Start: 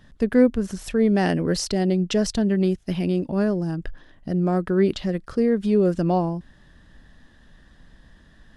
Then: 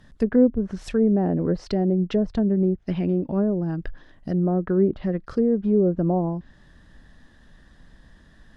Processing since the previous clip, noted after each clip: low-pass that closes with the level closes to 620 Hz, closed at -16.5 dBFS; peaking EQ 2.9 kHz -2.5 dB 0.63 oct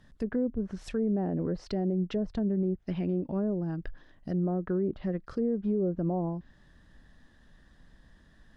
peak limiter -15 dBFS, peak gain reduction 7 dB; trim -6.5 dB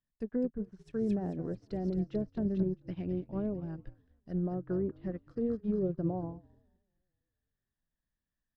frequency-shifting echo 221 ms, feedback 63%, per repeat -46 Hz, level -12 dB; upward expansion 2.5:1, over -47 dBFS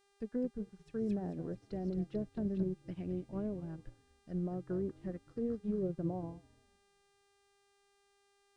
mains buzz 400 Hz, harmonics 25, -69 dBFS -4 dB/octave; trim -4 dB

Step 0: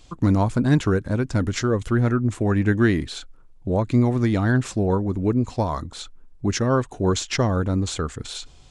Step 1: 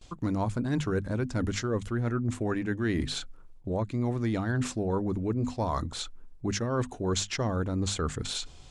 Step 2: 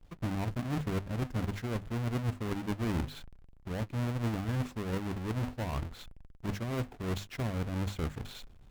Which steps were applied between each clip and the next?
hum notches 50/100/150/200/250 Hz; gate with hold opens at -43 dBFS; reverse; compression, threshold -26 dBFS, peak gain reduction 12.5 dB; reverse
square wave that keeps the level; tone controls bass +4 dB, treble -8 dB; Chebyshev shaper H 3 -15 dB, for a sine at -13 dBFS; trim -7 dB

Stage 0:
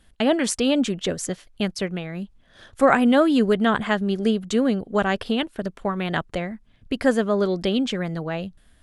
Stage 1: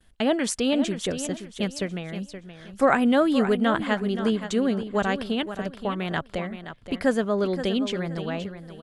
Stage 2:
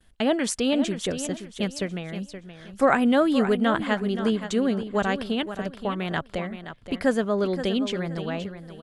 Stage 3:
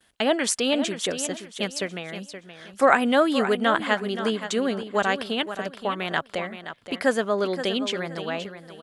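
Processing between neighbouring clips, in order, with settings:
gate with hold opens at -51 dBFS; on a send: feedback delay 523 ms, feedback 28%, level -11 dB; on the sum: trim -3 dB
no audible change
high-pass 560 Hz 6 dB/octave; trim +4.5 dB

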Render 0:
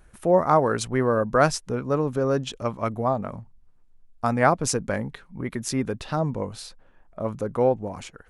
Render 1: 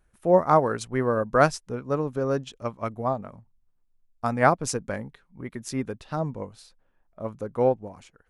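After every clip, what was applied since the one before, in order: upward expansion 1.5:1, over -41 dBFS; trim +1 dB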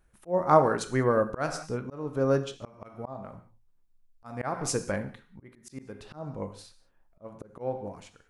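gated-style reverb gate 220 ms falling, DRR 9 dB; slow attack 336 ms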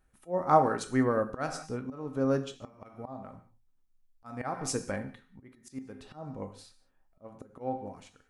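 feedback comb 260 Hz, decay 0.18 s, harmonics odd, mix 70%; trim +5.5 dB

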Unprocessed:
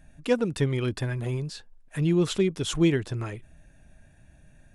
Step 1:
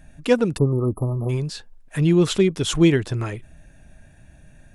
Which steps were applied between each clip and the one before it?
spectral selection erased 0.57–1.29 s, 1.3–9.8 kHz; trim +6 dB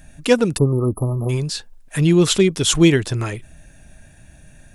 treble shelf 3.4 kHz +8.5 dB; trim +2.5 dB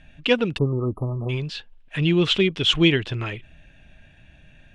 resonant low-pass 3 kHz, resonance Q 3.2; trim -5.5 dB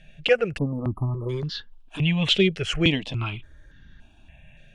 stepped phaser 3.5 Hz 280–2500 Hz; trim +2 dB

